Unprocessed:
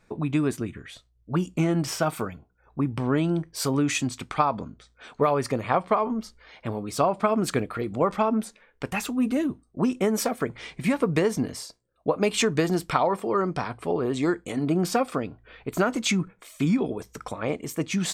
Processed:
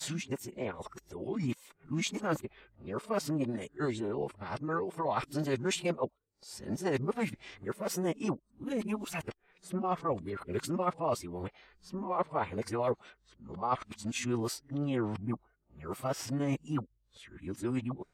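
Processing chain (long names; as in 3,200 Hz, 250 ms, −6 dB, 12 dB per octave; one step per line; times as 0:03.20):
played backwards from end to start
phase-vocoder pitch shift with formants kept −3 semitones
level −8.5 dB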